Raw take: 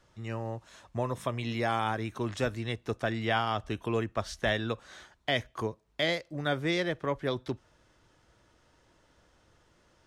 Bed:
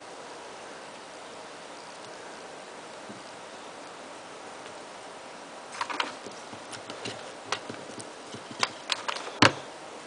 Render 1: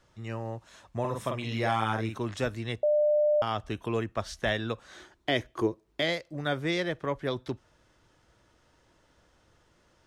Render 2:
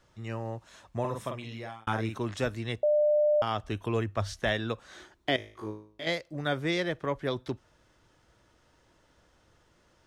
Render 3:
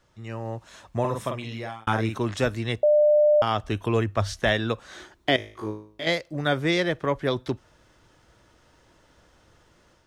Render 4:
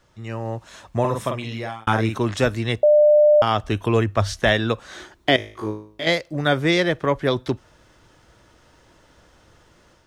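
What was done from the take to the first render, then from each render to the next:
1.00–2.17 s: doubling 45 ms -4 dB; 2.83–3.42 s: bleep 598 Hz -20.5 dBFS; 4.95–6.02 s: peaking EQ 340 Hz +12.5 dB 0.52 oct
0.99–1.87 s: fade out; 3.71–4.36 s: peaking EQ 100 Hz +5.5 dB -> +13.5 dB 0.27 oct; 5.36–6.07 s: feedback comb 53 Hz, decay 0.49 s, mix 100%
level rider gain up to 6 dB
trim +4.5 dB

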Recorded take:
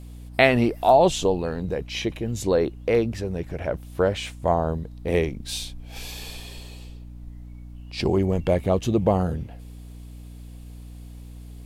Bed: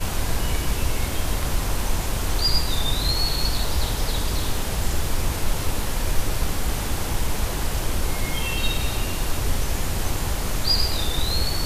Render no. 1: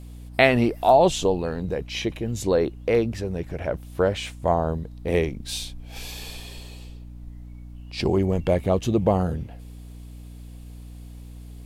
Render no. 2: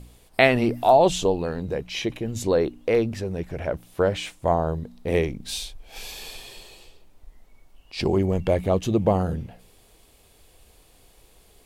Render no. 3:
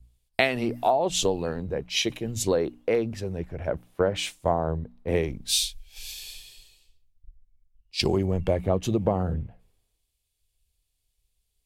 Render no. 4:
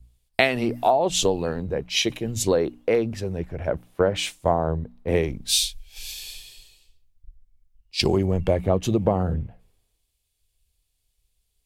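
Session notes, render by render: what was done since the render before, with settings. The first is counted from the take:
no audible change
de-hum 60 Hz, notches 5
compression 16:1, threshold -21 dBFS, peak gain reduction 11 dB; three bands expanded up and down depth 100%
trim +3 dB

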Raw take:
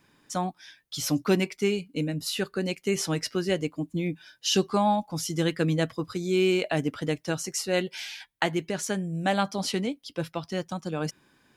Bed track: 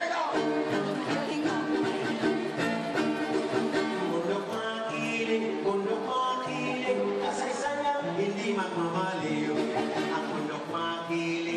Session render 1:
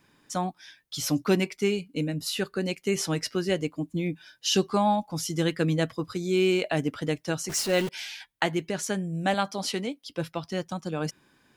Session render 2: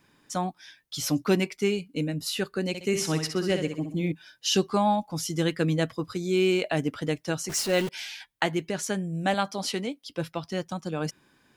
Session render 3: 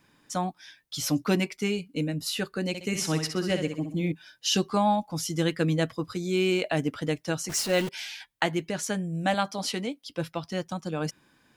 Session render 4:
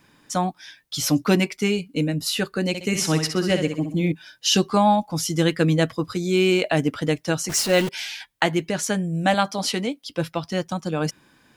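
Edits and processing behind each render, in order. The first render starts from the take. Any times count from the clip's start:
7.49–7.89 s: jump at every zero crossing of -30.5 dBFS; 9.34–10.08 s: bass shelf 150 Hz -11 dB
2.68–4.12 s: flutter echo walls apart 10.9 m, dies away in 0.5 s
band-stop 390 Hz, Q 12
trim +6 dB; peak limiter -2 dBFS, peak gain reduction 1 dB

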